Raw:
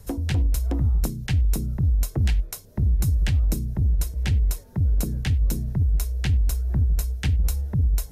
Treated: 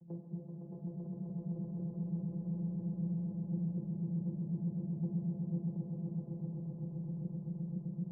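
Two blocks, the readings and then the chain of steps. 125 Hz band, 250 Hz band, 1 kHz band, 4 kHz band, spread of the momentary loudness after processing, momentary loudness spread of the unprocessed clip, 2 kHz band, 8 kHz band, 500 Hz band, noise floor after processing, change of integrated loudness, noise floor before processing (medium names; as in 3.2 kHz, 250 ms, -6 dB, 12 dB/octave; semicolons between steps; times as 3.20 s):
-15.5 dB, -4.0 dB, under -15 dB, under -40 dB, 6 LU, 3 LU, under -40 dB, under -40 dB, -10.5 dB, -49 dBFS, -15.0 dB, -45 dBFS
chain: random holes in the spectrogram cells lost 39%; reverb removal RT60 1.9 s; Chebyshev low-pass 540 Hz, order 4; spectral gate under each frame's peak -25 dB strong; peak limiter -25.5 dBFS, peak gain reduction 10 dB; compression, threshold -33 dBFS, peak gain reduction 6 dB; vocoder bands 8, saw 170 Hz; on a send: echo with a slow build-up 128 ms, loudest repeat 8, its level -4 dB; on the sum: algorithmic reverb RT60 5 s, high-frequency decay 0.6×, pre-delay 5 ms, DRR 0.5 dB; trim -3 dB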